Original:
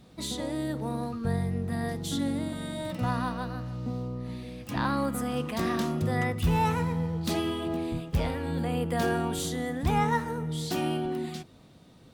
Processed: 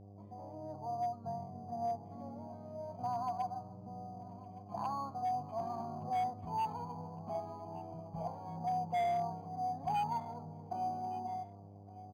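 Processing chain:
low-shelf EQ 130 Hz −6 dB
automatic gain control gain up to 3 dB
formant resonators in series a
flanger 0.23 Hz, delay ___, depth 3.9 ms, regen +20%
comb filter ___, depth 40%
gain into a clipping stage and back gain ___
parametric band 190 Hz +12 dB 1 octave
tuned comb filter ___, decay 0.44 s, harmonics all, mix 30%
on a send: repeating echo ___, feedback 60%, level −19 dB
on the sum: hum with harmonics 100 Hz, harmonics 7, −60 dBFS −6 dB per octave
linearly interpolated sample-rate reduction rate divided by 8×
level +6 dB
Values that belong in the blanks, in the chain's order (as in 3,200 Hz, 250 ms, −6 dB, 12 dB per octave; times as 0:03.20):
5.1 ms, 1.3 ms, 33.5 dB, 160 Hz, 1,164 ms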